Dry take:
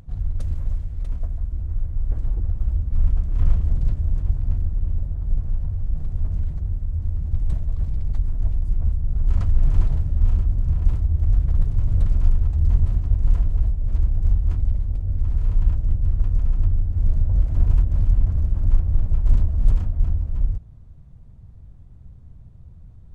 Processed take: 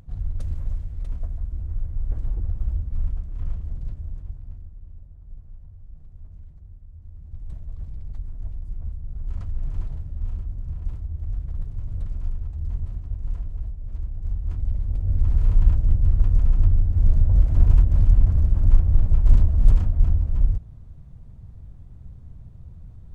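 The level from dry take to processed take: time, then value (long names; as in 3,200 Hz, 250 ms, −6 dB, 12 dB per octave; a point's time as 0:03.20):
0:02.71 −3 dB
0:03.38 −10.5 dB
0:04.02 −10.5 dB
0:04.79 −19 dB
0:06.99 −19 dB
0:07.70 −10.5 dB
0:14.18 −10.5 dB
0:15.14 +2 dB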